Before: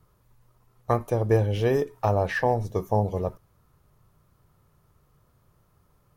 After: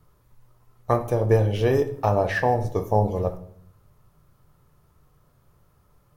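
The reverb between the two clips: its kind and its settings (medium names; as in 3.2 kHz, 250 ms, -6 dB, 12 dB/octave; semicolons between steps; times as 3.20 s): simulated room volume 110 m³, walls mixed, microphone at 0.33 m; trim +1.5 dB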